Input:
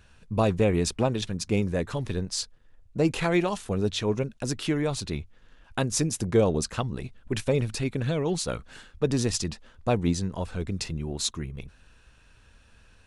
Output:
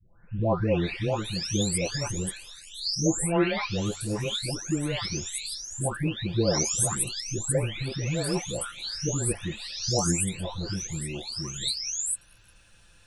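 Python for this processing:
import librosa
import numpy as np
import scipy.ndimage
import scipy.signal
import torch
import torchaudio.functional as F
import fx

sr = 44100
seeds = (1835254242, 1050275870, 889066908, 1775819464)

y = fx.spec_delay(x, sr, highs='late', ms=872)
y = fx.high_shelf(y, sr, hz=3000.0, db=9.5)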